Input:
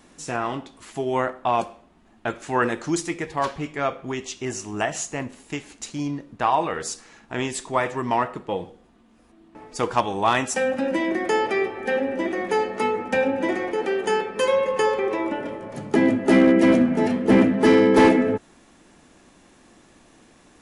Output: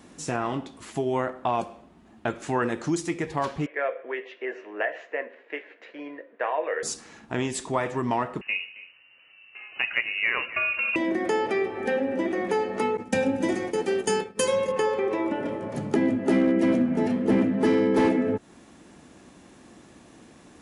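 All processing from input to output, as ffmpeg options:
-filter_complex "[0:a]asettb=1/sr,asplit=3[a][b][c];[a]atrim=end=3.664[d];[b]atrim=start=3.66:end=6.83,asetpts=PTS-STARTPTS,afade=t=in:d=0.004:c=qsin,afade=t=out:st=3.166:d=0.004:c=qsin,highpass=f=460:w=0.5412,highpass=f=460:w=1.3066,equalizer=f=510:t=q:w=4:g=7,equalizer=f=830:t=q:w=4:g=-10,equalizer=f=1.2k:t=q:w=4:g=-8,equalizer=f=1.8k:t=q:w=4:g=7,lowpass=f=2.4k:w=0.5412,lowpass=f=2.4k:w=1.3066,asplit=2[e][f];[f]adelay=13,volume=-12dB[g];[e][g]amix=inputs=2:normalize=0,atrim=end_sample=139797[h];[c]atrim=start=6.826[i];[d][h]acrossfade=d=0.004:c1=hsin:c2=qsin[j];[j][i]acrossfade=d=0.004:c1=qsin:c2=hsin,asettb=1/sr,asplit=3[k][l][m];[k]atrim=end=8.414[n];[l]atrim=start=8.41:end=10.96,asetpts=PTS-STARTPTS,afade=t=in:d=0.004:c=qsin,afade=t=out:st=2.546:d=0.004:c=qsin,lowpass=f=2.6k:t=q:w=0.5098,lowpass=f=2.6k:t=q:w=0.6013,lowpass=f=2.6k:t=q:w=0.9,lowpass=f=2.6k:t=q:w=2.563,afreqshift=-3000,aecho=1:1:269:0.112,atrim=end_sample=112455[o];[m]atrim=start=10.956[p];[n][o]acrossfade=d=0.004:c1=hsin:c2=qsin[q];[q][p]acrossfade=d=0.004:c1=qsin:c2=hsin,asettb=1/sr,asplit=3[r][s][t];[r]atrim=end=12.974[u];[s]atrim=start=12.97:end=14.72,asetpts=PTS-STARTPTS,afade=t=in:d=0.004:c=qsin,afade=t=out:st=1.746:d=0.004:c=qsin,bass=f=250:g=8,treble=f=4k:g=15,agate=range=-33dB:threshold=-22dB:ratio=3:release=100:detection=peak[v];[t]atrim=start=14.716[w];[u][v]acrossfade=d=0.004:c1=hsin:c2=qsin[x];[x][w]acrossfade=d=0.004:c1=qsin:c2=hsin,highpass=47,equalizer=f=160:w=0.32:g=4.5,acompressor=threshold=-26dB:ratio=2"

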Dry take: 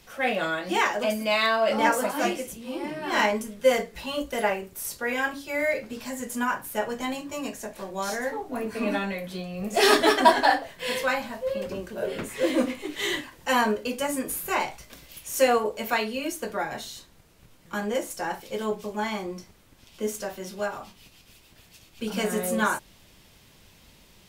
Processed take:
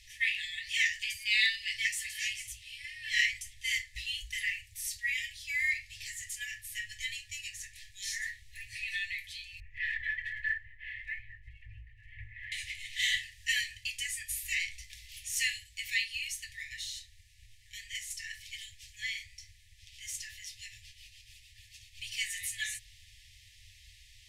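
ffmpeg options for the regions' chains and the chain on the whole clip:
-filter_complex "[0:a]asettb=1/sr,asplit=3[a][b][c];[a]atrim=end=9.604[d];[b]atrim=start=9.6:end=12.52,asetpts=PTS-STARTPTS,afade=t=in:d=0.004:c=qsin,afade=t=out:st=2.916:d=0.004:c=qsin,lowpass=f=1.7k:w=0.5412,lowpass=f=1.7k:w=1.3066,aphaser=in_gain=1:out_gain=1:delay=4.3:decay=0.24:speed=1.1:type=triangular[e];[c]atrim=start=12.516[f];[d][e]acrossfade=d=0.004:c1=hsin:c2=qsin[g];[g][f]acrossfade=d=0.004:c1=qsin:c2=hsin,lowpass=9.4k,afftfilt=real='re*(1-between(b*sr/4096,110,1700))':imag='im*(1-between(b*sr/4096,110,1700))':win_size=4096:overlap=0.75"

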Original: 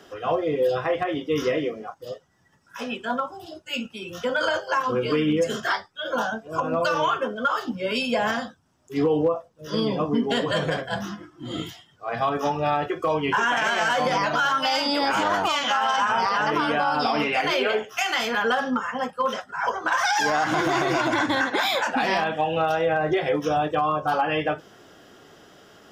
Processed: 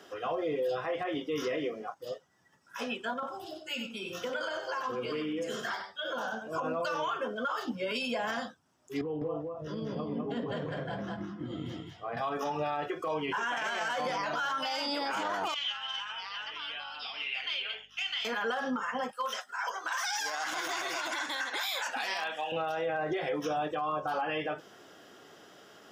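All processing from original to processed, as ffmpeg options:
-filter_complex "[0:a]asettb=1/sr,asplit=3[a][b][c];[a]atrim=end=3.134[d];[b]atrim=start=3.13:end=6.51,asetpts=PTS-STARTPTS,afade=t=in:d=0.004:c=qsin,afade=t=out:st=3.376:d=0.004:c=qsin,acompressor=threshold=-28dB:ratio=6:attack=3.2:release=140:knee=1:detection=peak,aecho=1:1:95:0.447,atrim=end_sample=149058[e];[c]atrim=start=6.506[f];[d][e]acrossfade=d=0.004:c1=hsin:c2=qsin[g];[g][f]acrossfade=d=0.004:c1=qsin:c2=hsin,asettb=1/sr,asplit=3[h][i][j];[h]atrim=end=9.014[k];[i]atrim=start=9.01:end=12.17,asetpts=PTS-STARTPTS,afade=t=in:d=0.004:c=qsin,afade=t=out:st=3.156:d=0.004:c=qsin,aemphasis=mode=reproduction:type=riaa,acompressor=threshold=-29dB:ratio=5:attack=3.2:release=140:knee=1:detection=peak,aecho=1:1:204:0.708,atrim=end_sample=139356[l];[j]atrim=start=12.166[m];[k][l]acrossfade=d=0.004:c1=hsin:c2=qsin[n];[n][m]acrossfade=d=0.004:c1=qsin:c2=hsin,asettb=1/sr,asplit=3[o][p][q];[o]atrim=end=15.544[r];[p]atrim=start=15.54:end=18.25,asetpts=PTS-STARTPTS,afade=t=in:d=0.004:c=qsin,afade=t=out:st=2.706:d=0.004:c=qsin,bandpass=f=3.1k:t=q:w=3.1,aeval=exprs='val(0)+0.00112*(sin(2*PI*50*n/s)+sin(2*PI*2*50*n/s)/2+sin(2*PI*3*50*n/s)/3+sin(2*PI*4*50*n/s)/4+sin(2*PI*5*50*n/s)/5)':c=same[s];[q]atrim=start=18.246[t];[r][s]acrossfade=d=0.004:c1=hsin:c2=qsin[u];[u][t]acrossfade=d=0.004:c1=qsin:c2=hsin,asettb=1/sr,asplit=3[v][w][x];[v]atrim=end=19.114[y];[w]atrim=start=19.11:end=22.52,asetpts=PTS-STARTPTS,afade=t=in:d=0.004:c=qsin,afade=t=out:st=3.406:d=0.004:c=qsin,highpass=f=1.3k:p=1,highshelf=f=5.2k:g=9[z];[x]atrim=start=22.516[aa];[y][z]acrossfade=d=0.004:c1=hsin:c2=qsin[ab];[ab][aa]acrossfade=d=0.004:c1=qsin:c2=hsin,highpass=f=240:p=1,alimiter=limit=-21.5dB:level=0:latency=1:release=72,volume=-3dB"

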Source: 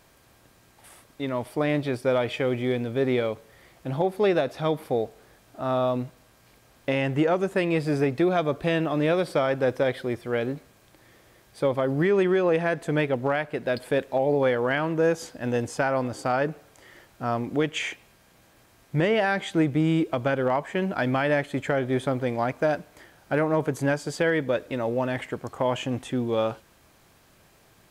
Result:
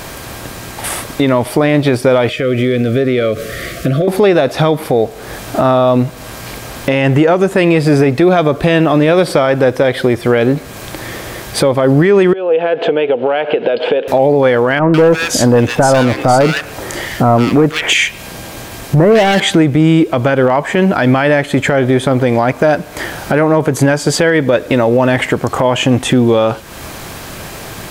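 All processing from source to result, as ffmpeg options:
-filter_complex "[0:a]asettb=1/sr,asplit=3[a][b][c];[a]atrim=end=2.294[d];[b]atrim=start=2.29:end=4.08,asetpts=PTS-STARTPTS,afade=t=in:d=0.004:c=qsin,afade=t=out:st=1.786:d=0.004:c=qsin,acompressor=threshold=-40dB:ratio=3:attack=3.2:release=140:knee=1:detection=peak,asuperstop=centerf=890:order=20:qfactor=2.3[e];[c]atrim=start=4.076[f];[d][e]acrossfade=d=0.004:c1=hsin:c2=qsin[g];[g][f]acrossfade=d=0.004:c1=qsin:c2=hsin,asettb=1/sr,asplit=3[h][i][j];[h]atrim=end=12.334[k];[i]atrim=start=12.33:end=14.08,asetpts=PTS-STARTPTS,afade=t=in:d=0.004:c=qsin,afade=t=out:st=1.746:d=0.004:c=qsin,acompressor=threshold=-37dB:ratio=6:attack=3.2:release=140:knee=1:detection=peak,highpass=350,equalizer=f=470:t=q:w=4:g=10,equalizer=f=780:t=q:w=4:g=3,equalizer=f=1.1k:t=q:w=4:g=-5,equalizer=f=1.9k:t=q:w=4:g=-8,equalizer=f=3k:t=q:w=4:g=8,lowpass=f=3.3k:w=0.5412,lowpass=f=3.3k:w=1.3066[l];[j]atrim=start=14.076[m];[k][l]acrossfade=d=0.004:c1=hsin:c2=qsin[n];[n][m]acrossfade=d=0.004:c1=qsin:c2=hsin,asettb=1/sr,asplit=3[o][p][q];[o]atrim=end=14.794[r];[p]atrim=start=14.79:end=19.4,asetpts=PTS-STARTPTS,afade=t=in:d=0.004:c=qsin,afade=t=out:st=4.606:d=0.004:c=qsin,volume=22dB,asoftclip=hard,volume=-22dB,acrossover=split=1500[s][t];[t]adelay=150[u];[s][u]amix=inputs=2:normalize=0,atrim=end_sample=203301[v];[q]atrim=start=19.396[w];[r][v]acrossfade=d=0.004:c1=hsin:c2=qsin[x];[x][w]acrossfade=d=0.004:c1=qsin:c2=hsin,acompressor=threshold=-41dB:ratio=3,alimiter=level_in=31dB:limit=-1dB:release=50:level=0:latency=1,volume=-1dB"

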